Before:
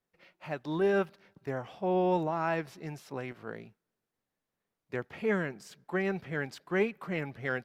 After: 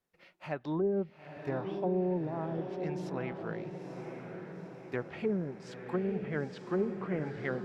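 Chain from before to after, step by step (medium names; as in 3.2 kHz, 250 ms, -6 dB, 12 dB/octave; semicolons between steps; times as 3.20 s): low-pass that closes with the level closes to 370 Hz, closed at -26 dBFS; echo that smears into a reverb 917 ms, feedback 56%, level -6.5 dB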